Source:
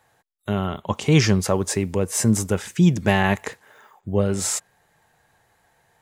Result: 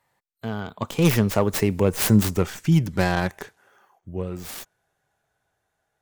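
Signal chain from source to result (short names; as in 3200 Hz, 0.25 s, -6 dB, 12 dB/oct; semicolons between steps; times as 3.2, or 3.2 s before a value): tracing distortion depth 0.3 ms; Doppler pass-by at 1.88, 33 m/s, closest 19 m; gain +2.5 dB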